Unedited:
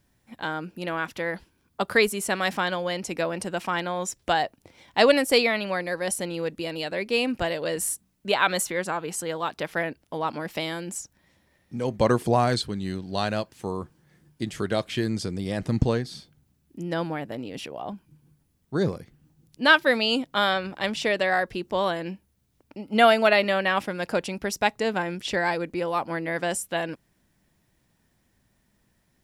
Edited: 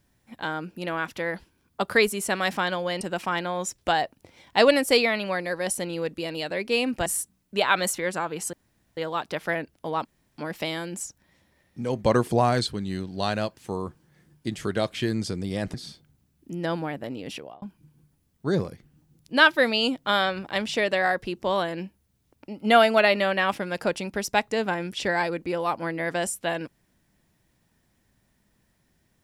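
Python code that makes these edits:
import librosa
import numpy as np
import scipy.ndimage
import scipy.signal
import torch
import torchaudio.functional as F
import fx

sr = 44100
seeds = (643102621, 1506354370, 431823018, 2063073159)

y = fx.edit(x, sr, fx.cut(start_s=3.01, length_s=0.41),
    fx.cut(start_s=7.47, length_s=0.31),
    fx.insert_room_tone(at_s=9.25, length_s=0.44),
    fx.insert_room_tone(at_s=10.33, length_s=0.33),
    fx.cut(start_s=15.69, length_s=0.33),
    fx.fade_out_span(start_s=17.64, length_s=0.26), tone=tone)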